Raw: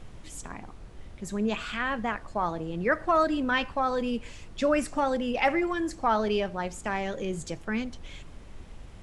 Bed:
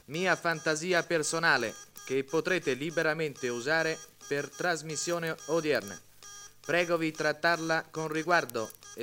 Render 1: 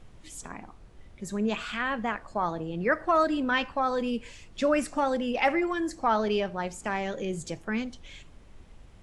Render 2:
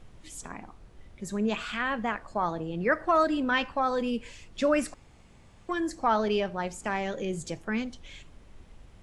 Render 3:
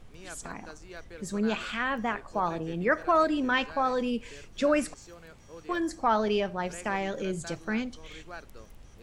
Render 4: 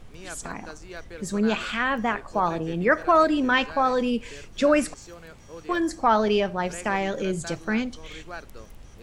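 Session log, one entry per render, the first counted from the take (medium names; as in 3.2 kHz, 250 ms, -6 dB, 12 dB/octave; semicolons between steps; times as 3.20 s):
noise print and reduce 6 dB
4.94–5.69 s: room tone
add bed -18 dB
trim +5 dB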